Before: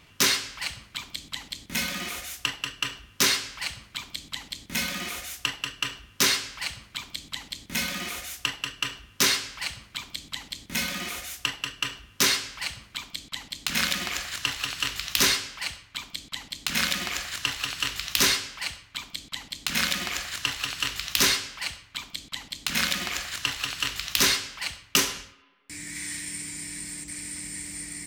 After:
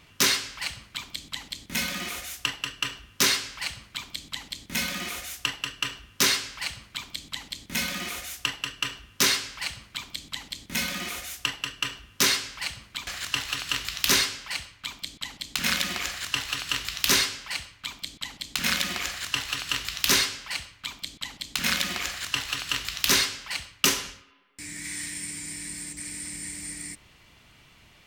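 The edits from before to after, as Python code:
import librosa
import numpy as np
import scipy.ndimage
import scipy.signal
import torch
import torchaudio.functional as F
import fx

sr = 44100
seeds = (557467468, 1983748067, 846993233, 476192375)

y = fx.edit(x, sr, fx.cut(start_s=13.07, length_s=1.11), tone=tone)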